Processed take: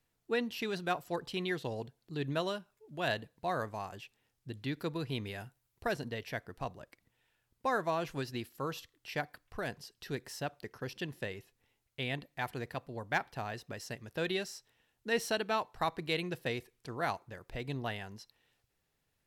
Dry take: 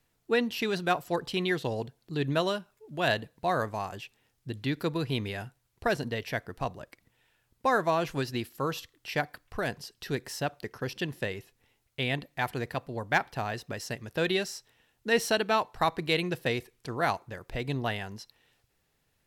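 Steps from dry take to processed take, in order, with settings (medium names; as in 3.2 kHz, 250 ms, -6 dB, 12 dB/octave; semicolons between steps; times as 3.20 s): 5.27–5.92 s: treble shelf 11 kHz +7.5 dB; trim -6.5 dB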